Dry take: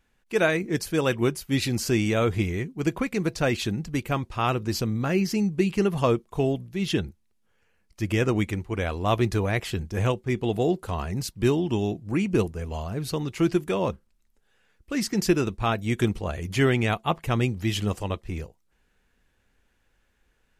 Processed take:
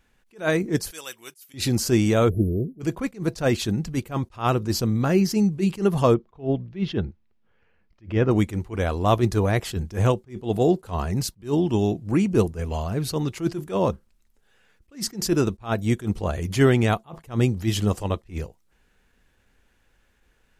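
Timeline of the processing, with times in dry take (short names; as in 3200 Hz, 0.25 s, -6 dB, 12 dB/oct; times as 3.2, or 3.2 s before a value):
0.91–1.54 differentiator
2.29–2.8 spectral delete 710–9800 Hz
6.14–8.31 air absorption 260 m
whole clip: dynamic EQ 2400 Hz, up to -7 dB, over -45 dBFS, Q 1.3; attack slew limiter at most 230 dB/s; gain +4.5 dB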